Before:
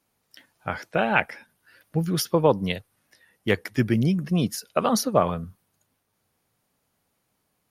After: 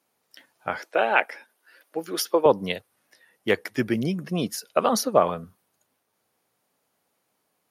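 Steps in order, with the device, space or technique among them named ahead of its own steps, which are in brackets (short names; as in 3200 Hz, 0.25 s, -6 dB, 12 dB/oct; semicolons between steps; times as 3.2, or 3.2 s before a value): filter by subtraction (in parallel: LPF 480 Hz 12 dB/oct + phase invert); 0.79–2.46 on the sum: HPF 280 Hz 24 dB/oct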